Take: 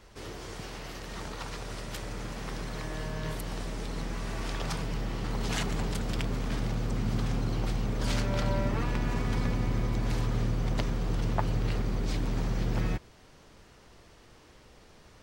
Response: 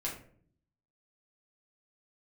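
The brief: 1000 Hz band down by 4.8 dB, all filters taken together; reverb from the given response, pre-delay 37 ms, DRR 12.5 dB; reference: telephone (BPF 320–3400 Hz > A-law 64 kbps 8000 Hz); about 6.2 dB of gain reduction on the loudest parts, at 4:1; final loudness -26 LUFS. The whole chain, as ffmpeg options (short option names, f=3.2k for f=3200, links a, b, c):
-filter_complex "[0:a]equalizer=f=1k:t=o:g=-6,acompressor=threshold=-32dB:ratio=4,asplit=2[a][b];[1:a]atrim=start_sample=2205,adelay=37[c];[b][c]afir=irnorm=-1:irlink=0,volume=-15dB[d];[a][d]amix=inputs=2:normalize=0,highpass=320,lowpass=3.4k,volume=19dB" -ar 8000 -c:a pcm_alaw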